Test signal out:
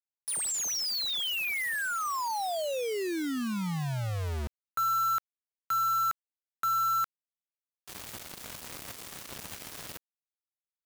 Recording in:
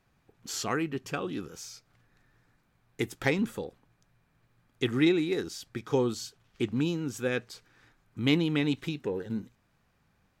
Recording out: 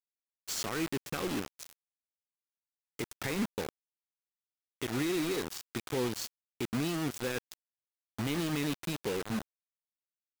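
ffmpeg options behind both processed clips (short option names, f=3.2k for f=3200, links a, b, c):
-af "alimiter=level_in=1dB:limit=-24dB:level=0:latency=1:release=126,volume=-1dB,highpass=f=71:w=0.5412,highpass=f=71:w=1.3066,acrusher=bits=5:mix=0:aa=0.000001"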